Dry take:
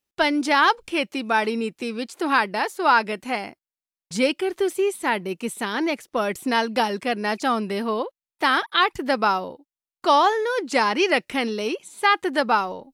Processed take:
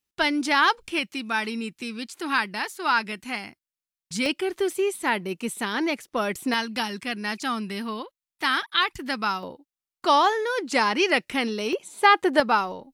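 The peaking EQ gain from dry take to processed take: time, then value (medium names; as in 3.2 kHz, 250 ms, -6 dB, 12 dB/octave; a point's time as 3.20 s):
peaking EQ 560 Hz 1.6 oct
-6.5 dB
from 0.99 s -13 dB
from 4.26 s -3.5 dB
from 6.54 s -13.5 dB
from 9.43 s -3.5 dB
from 11.73 s +4.5 dB
from 12.40 s -3 dB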